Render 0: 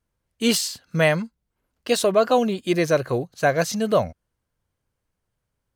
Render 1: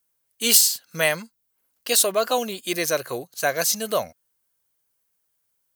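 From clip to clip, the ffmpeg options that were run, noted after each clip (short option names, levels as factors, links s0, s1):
-af "aemphasis=mode=production:type=riaa,volume=0.75"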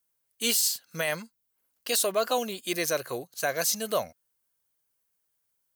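-af "alimiter=limit=0.282:level=0:latency=1:release=20,volume=0.631"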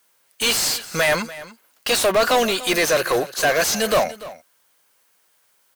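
-filter_complex "[0:a]asplit=2[s0][s1];[s1]highpass=f=720:p=1,volume=17.8,asoftclip=type=tanh:threshold=0.188[s2];[s0][s2]amix=inputs=2:normalize=0,lowpass=f=3400:p=1,volume=0.501,aecho=1:1:292:0.141,volume=1.78"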